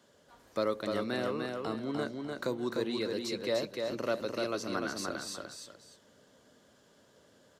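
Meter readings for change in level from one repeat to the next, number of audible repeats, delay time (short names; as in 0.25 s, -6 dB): -10.5 dB, 2, 0.299 s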